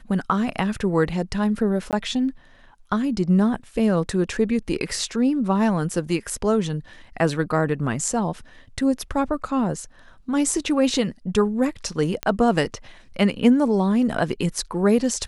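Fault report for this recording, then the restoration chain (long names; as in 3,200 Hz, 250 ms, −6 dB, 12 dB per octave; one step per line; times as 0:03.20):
0:01.91–0:01.93: drop-out 18 ms
0:12.23: click −9 dBFS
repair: click removal
repair the gap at 0:01.91, 18 ms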